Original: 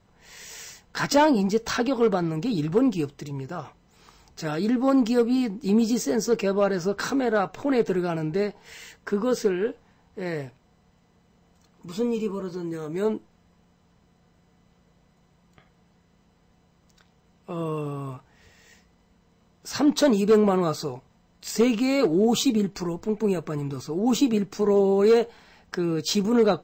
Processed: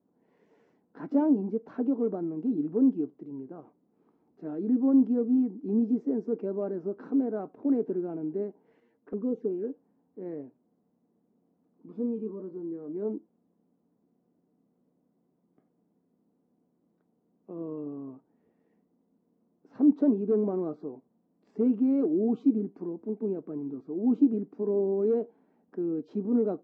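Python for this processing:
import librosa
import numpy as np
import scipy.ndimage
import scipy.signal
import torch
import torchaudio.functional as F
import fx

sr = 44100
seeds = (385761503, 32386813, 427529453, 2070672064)

y = fx.ladder_bandpass(x, sr, hz=310.0, resonance_pct=55)
y = fx.env_flanger(y, sr, rest_ms=8.9, full_db=-30.5, at=(8.8, 9.64))
y = F.gain(torch.from_numpy(y), 3.5).numpy()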